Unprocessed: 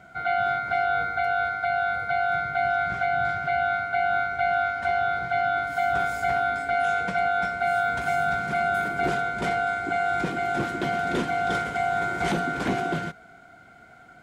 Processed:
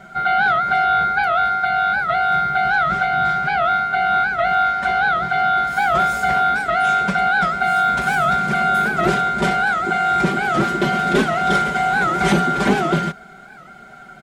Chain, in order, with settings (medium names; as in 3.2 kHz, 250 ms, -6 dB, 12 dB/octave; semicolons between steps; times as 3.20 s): comb 5.1 ms, depth 99%; warped record 78 rpm, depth 160 cents; trim +6.5 dB